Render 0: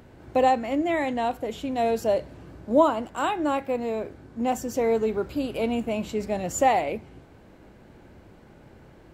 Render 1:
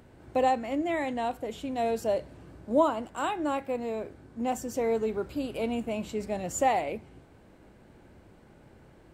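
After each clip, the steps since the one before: peaking EQ 8.6 kHz +6.5 dB 0.24 oct; trim -4.5 dB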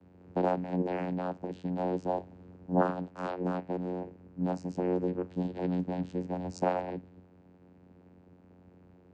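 vocoder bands 8, saw 90.3 Hz; trim -2 dB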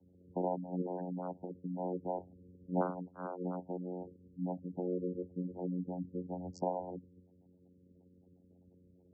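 spectral gate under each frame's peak -15 dB strong; trim -6 dB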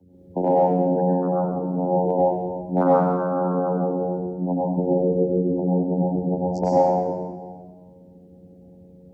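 treble shelf 3.8 kHz -4.5 dB; in parallel at -8.5 dB: one-sided clip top -26.5 dBFS; on the sum: reverberation RT60 1.6 s, pre-delay 91 ms, DRR -6 dB; trim +8 dB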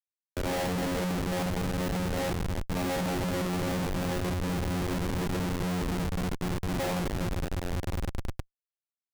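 spectral selection erased 4.31–6.80 s, 470–1400 Hz; echo with a slow build-up 102 ms, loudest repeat 8, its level -12 dB; Schmitt trigger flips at -20 dBFS; trim -8 dB

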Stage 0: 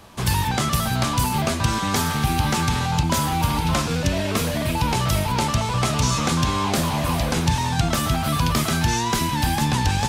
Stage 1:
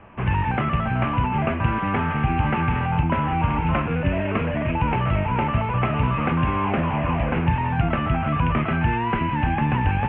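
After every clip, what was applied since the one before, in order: steep low-pass 2.8 kHz 72 dB/octave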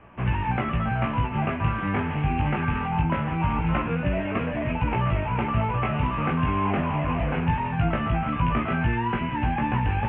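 chorus 0.22 Hz, delay 16.5 ms, depth 3.6 ms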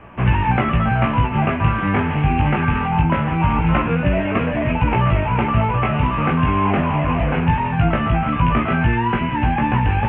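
gain riding 2 s; trim +7 dB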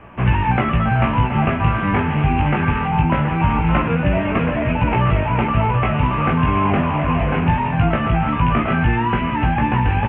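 delay 724 ms -11 dB

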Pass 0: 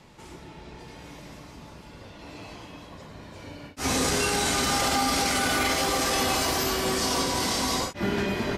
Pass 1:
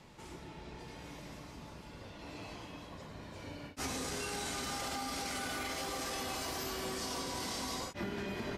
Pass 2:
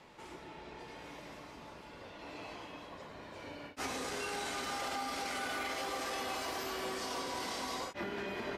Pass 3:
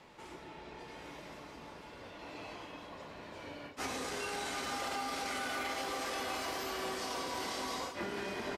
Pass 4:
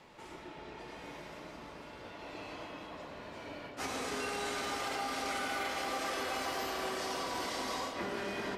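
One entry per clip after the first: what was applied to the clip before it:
compression 10:1, threshold -31 dBFS, peak gain reduction 11 dB; trim -4.5 dB
tone controls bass -11 dB, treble -7 dB; trim +2.5 dB
delay 739 ms -10 dB
reverberation RT60 1.1 s, pre-delay 76 ms, DRR 3 dB

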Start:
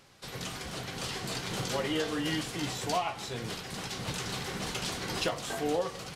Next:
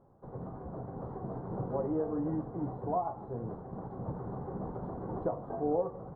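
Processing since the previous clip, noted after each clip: inverse Chebyshev low-pass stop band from 2.4 kHz, stop band 50 dB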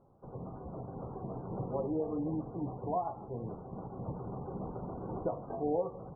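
spectral gate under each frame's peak -30 dB strong; trim -1.5 dB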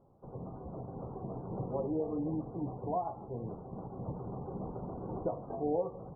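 low-pass 1.2 kHz 12 dB/octave

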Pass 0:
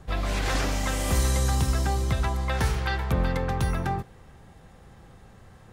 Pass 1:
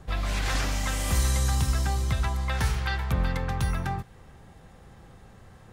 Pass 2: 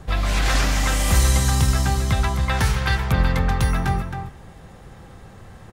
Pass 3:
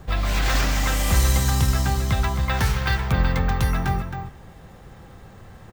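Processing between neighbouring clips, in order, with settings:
dynamic bell 410 Hz, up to -7 dB, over -43 dBFS, Q 0.73
echo from a far wall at 46 m, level -7 dB; trim +7 dB
careless resampling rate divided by 2×, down filtered, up hold; trim -1.5 dB

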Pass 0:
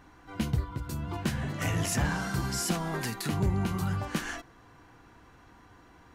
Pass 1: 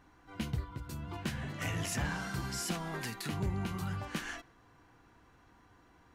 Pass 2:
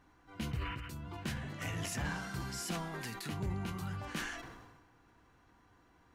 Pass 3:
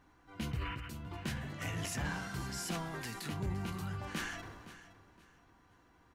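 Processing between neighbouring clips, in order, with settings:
dynamic bell 2.6 kHz, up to +4 dB, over -50 dBFS, Q 0.77; trim -7 dB
painted sound noise, 0.51–0.91 s, 1.1–3.1 kHz -52 dBFS; decay stretcher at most 41 dB/s; trim -3.5 dB
feedback delay 516 ms, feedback 27%, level -15.5 dB

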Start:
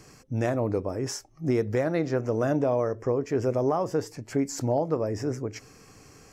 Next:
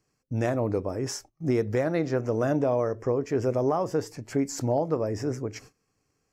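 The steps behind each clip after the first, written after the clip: gate -47 dBFS, range -23 dB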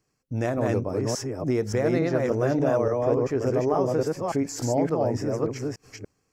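chunks repeated in reverse 288 ms, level -1 dB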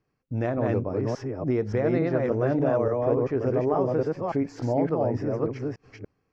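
distance through air 260 m

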